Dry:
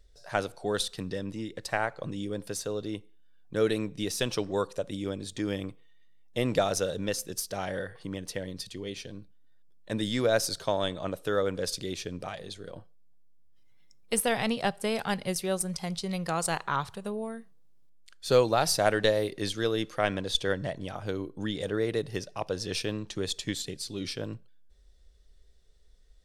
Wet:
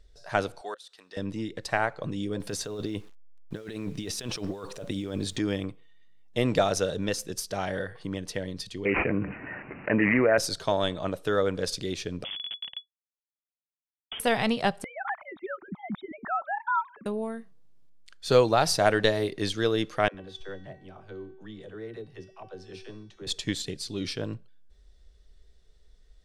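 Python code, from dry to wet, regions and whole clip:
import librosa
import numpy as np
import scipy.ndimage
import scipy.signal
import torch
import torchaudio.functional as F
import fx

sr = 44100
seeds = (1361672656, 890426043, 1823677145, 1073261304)

y = fx.chain(x, sr, fx.highpass(hz=780.0, slope=12),
    fx.auto_swell(attack_ms=734.0), at=(0.61, 1.17))
y = fx.chain(y, sr, fx.over_compress(threshold_db=-37.0, ratio=-1.0),
    fx.quant_dither(seeds[0], bits=10, dither='none'), at=(2.4, 5.39))
y = fx.chain(y, sr, fx.highpass(hz=260.0, slope=6),
    fx.resample_bad(factor=8, down='none', up='filtered'),
    fx.env_flatten(amount_pct=70), at=(8.85, 10.38))
y = fx.chain(y, sr, fx.schmitt(flips_db=-32.5),
    fx.freq_invert(carrier_hz=3400), at=(12.24, 14.2))
y = fx.chain(y, sr, fx.sine_speech(),
    fx.fixed_phaser(hz=1200.0, stages=4), at=(14.84, 17.06))
y = fx.chain(y, sr, fx.high_shelf(hz=4200.0, db=-12.0),
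    fx.comb_fb(f0_hz=380.0, decay_s=0.8, harmonics='all', damping=0.0, mix_pct=80),
    fx.dispersion(late='lows', ms=59.0, hz=330.0), at=(20.08, 23.27))
y = fx.high_shelf(y, sr, hz=10000.0, db=-11.5)
y = fx.notch(y, sr, hz=530.0, q=17.0)
y = F.gain(torch.from_numpy(y), 3.0).numpy()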